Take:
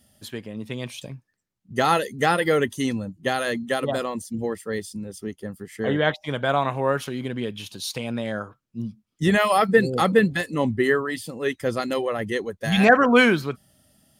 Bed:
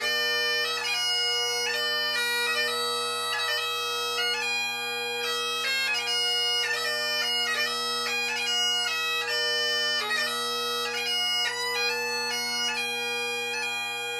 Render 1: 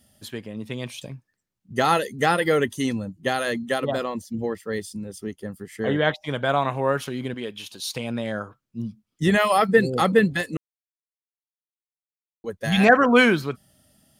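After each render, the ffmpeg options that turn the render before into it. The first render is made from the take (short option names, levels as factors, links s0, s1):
-filter_complex "[0:a]asettb=1/sr,asplit=3[s0][s1][s2];[s0]atrim=end=3.784[s3];[s1]atrim=start=3.78:end=4.69,asetpts=PTS-STARTPTS,afade=t=in:d=0.004:c=qsin,afade=t=out:st=0.906:d=0.004:c=qsin,equalizer=f=9500:t=o:w=0.81:g=-9[s4];[s2]atrim=start=4.686[s5];[s3][s4]acrossfade=d=0.004:c1=hsin:c2=qsin[s6];[s6][s5]acrossfade=d=0.004:c1=qsin:c2=hsin,asettb=1/sr,asplit=3[s7][s8][s9];[s7]atrim=end=7.344[s10];[s8]atrim=start=7.34:end=7.85,asetpts=PTS-STARTPTS,afade=t=in:d=0.004:c=qsin,afade=t=out:st=0.506:d=0.004:c=qsin,equalizer=f=110:w=0.61:g=-11[s11];[s9]atrim=start=7.846[s12];[s10][s11]acrossfade=d=0.004:c1=hsin:c2=qsin[s13];[s13][s12]acrossfade=d=0.004:c1=qsin:c2=hsin,asplit=3[s14][s15][s16];[s14]atrim=end=10.57,asetpts=PTS-STARTPTS,afade=t=out:st=10.566:d=0.004:c=hsin[s17];[s15]atrim=start=10.57:end=12.44,asetpts=PTS-STARTPTS,volume=0[s18];[s16]atrim=start=12.44,asetpts=PTS-STARTPTS,afade=t=in:d=0.004:c=hsin[s19];[s17][s18][s19]concat=n=3:v=0:a=1"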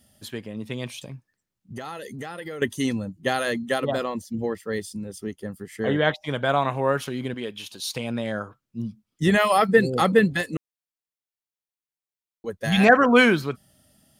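-filter_complex "[0:a]asettb=1/sr,asplit=3[s0][s1][s2];[s0]atrim=end=0.884[s3];[s1]atrim=start=0.88:end=2.62,asetpts=PTS-STARTPTS,afade=t=in:d=0.004:c=qsin,afade=t=out:st=1.736:d=0.004:c=qsin,acompressor=threshold=0.0251:ratio=6:attack=3.2:release=140:knee=1:detection=peak[s4];[s2]atrim=start=2.616[s5];[s3][s4]acrossfade=d=0.004:c1=hsin:c2=qsin[s6];[s6][s5]acrossfade=d=0.004:c1=qsin:c2=hsin"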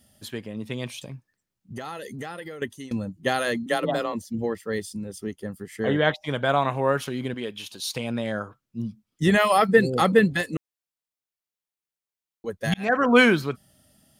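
-filter_complex "[0:a]asettb=1/sr,asplit=3[s0][s1][s2];[s0]atrim=end=3.664[s3];[s1]atrim=start=3.66:end=4.13,asetpts=PTS-STARTPTS,afade=t=in:d=0.004:c=qsin,afade=t=out:st=0.466:d=0.004:c=qsin,afreqshift=27[s4];[s2]atrim=start=4.126[s5];[s3][s4]acrossfade=d=0.004:c1=hsin:c2=qsin[s6];[s6][s5]acrossfade=d=0.004:c1=qsin:c2=hsin,asplit=3[s7][s8][s9];[s7]atrim=end=2.91,asetpts=PTS-STARTPTS,afade=t=out:st=2.31:d=0.6:silence=0.0841395[s10];[s8]atrim=start=2.91:end=12.74,asetpts=PTS-STARTPTS,afade=t=in:d=0.004:c=hsin:silence=0.0841395,afade=t=out:st=9.826:d=0.004:c=hsin[s11];[s9]atrim=start=12.74,asetpts=PTS-STARTPTS,afade=t=in:d=0.42[s12];[s10][s11][s12]concat=n=3:v=0:a=1"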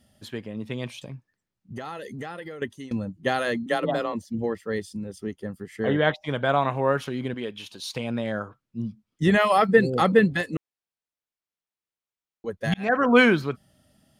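-af "lowpass=f=3800:p=1"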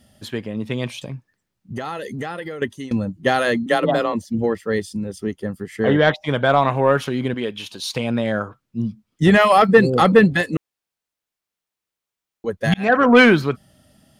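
-af "acontrast=86"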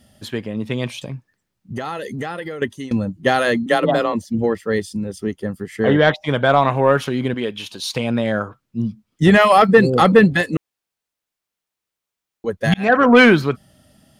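-af "volume=1.19,alimiter=limit=0.794:level=0:latency=1"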